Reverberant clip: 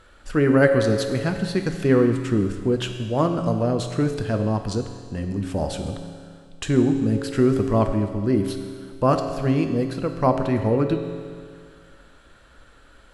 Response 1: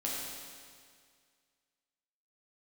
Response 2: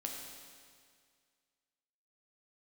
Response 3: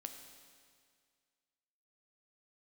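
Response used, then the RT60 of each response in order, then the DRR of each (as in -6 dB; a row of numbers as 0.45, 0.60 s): 3; 2.0, 2.0, 2.0 s; -5.5, 0.0, 5.5 dB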